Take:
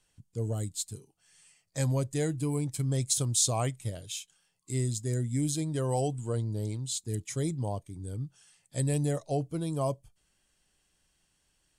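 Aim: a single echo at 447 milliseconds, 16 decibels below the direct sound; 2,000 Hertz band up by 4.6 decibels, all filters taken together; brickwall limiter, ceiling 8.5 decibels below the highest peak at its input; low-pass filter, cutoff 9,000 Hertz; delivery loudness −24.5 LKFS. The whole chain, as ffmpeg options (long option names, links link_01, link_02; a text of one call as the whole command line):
ffmpeg -i in.wav -af "lowpass=9000,equalizer=frequency=2000:width_type=o:gain=5.5,alimiter=limit=-22.5dB:level=0:latency=1,aecho=1:1:447:0.158,volume=9dB" out.wav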